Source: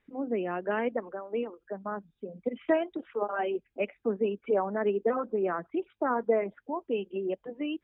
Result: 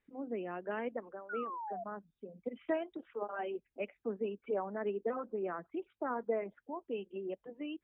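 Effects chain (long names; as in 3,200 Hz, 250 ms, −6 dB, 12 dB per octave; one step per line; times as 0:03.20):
sound drawn into the spectrogram fall, 0:01.29–0:01.84, 660–1,500 Hz −33 dBFS
level −8.5 dB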